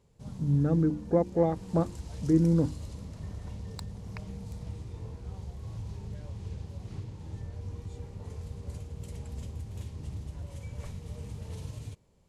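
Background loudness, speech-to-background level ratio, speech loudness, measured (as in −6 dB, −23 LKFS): −41.5 LKFS, 14.0 dB, −27.5 LKFS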